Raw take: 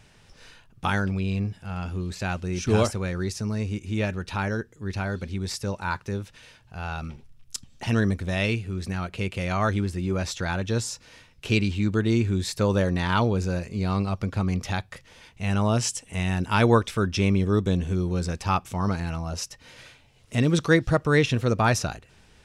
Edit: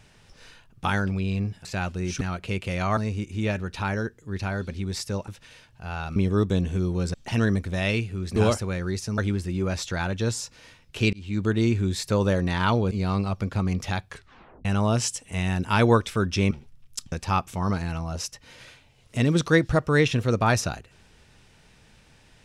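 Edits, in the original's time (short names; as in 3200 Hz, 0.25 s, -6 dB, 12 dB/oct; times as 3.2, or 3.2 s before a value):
1.65–2.13 cut
2.69–3.51 swap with 8.91–9.67
5.82–6.2 cut
7.08–7.69 swap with 17.32–18.3
11.62–11.94 fade in
13.4–13.72 cut
14.88 tape stop 0.58 s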